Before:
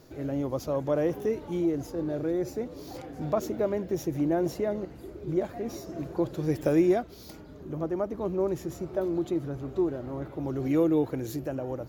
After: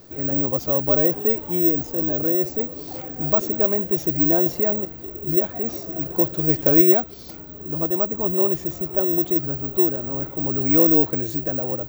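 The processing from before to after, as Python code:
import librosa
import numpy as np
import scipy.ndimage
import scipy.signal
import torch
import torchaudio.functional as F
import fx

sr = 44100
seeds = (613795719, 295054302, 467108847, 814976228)

y = (np.kron(scipy.signal.resample_poly(x, 1, 2), np.eye(2)[0]) * 2)[:len(x)]
y = y * 10.0 ** (5.0 / 20.0)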